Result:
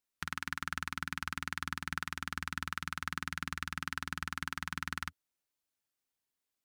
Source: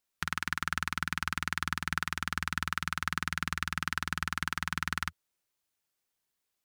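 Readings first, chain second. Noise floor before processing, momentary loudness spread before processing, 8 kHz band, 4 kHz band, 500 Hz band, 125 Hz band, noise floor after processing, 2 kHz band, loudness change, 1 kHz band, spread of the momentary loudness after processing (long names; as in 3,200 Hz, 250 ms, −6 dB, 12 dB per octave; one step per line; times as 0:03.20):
−84 dBFS, 1 LU, −5.5 dB, −5.5 dB, −5.5 dB, −5.5 dB, below −85 dBFS, −5.5 dB, −5.5 dB, −5.5 dB, 1 LU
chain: parametric band 270 Hz +6 dB 0.22 octaves
level −5.5 dB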